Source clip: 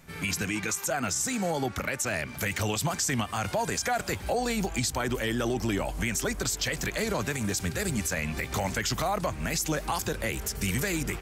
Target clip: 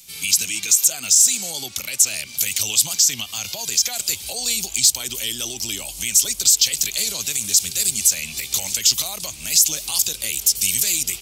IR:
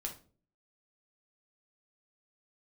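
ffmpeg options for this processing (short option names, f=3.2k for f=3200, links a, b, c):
-filter_complex "[0:a]asettb=1/sr,asplit=3[a][b][c];[a]atrim=end=2.934[d];[b]atrim=start=2.93:end=3.93,asetpts=PTS-STARTPTS,afade=t=in:d=0.004:c=qsin,afade=t=out:st=0.996:d=0.004:c=qsin,equalizer=f=9.1k:t=o:w=0.36:g=-12.5[e];[c]atrim=start=3.926[f];[d][e]acrossfade=d=0.004:c1=hsin:c2=qsin[g];[g][f]acrossfade=d=0.004:c1=qsin:c2=hsin,acrossover=split=380|1600[h][i][j];[j]aexciter=amount=10.6:drive=8.2:freq=2.5k[k];[h][i][k]amix=inputs=3:normalize=0,volume=-9.5dB"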